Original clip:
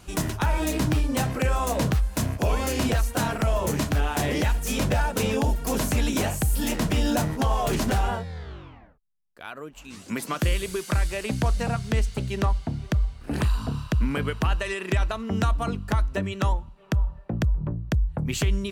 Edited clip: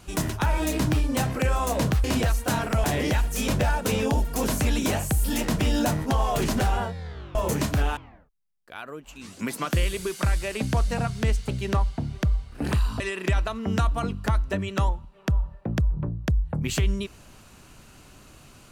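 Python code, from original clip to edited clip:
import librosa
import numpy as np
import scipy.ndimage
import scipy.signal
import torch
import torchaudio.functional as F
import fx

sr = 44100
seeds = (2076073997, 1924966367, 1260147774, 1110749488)

y = fx.edit(x, sr, fx.cut(start_s=2.04, length_s=0.69),
    fx.move(start_s=3.53, length_s=0.62, to_s=8.66),
    fx.cut(start_s=13.69, length_s=0.95), tone=tone)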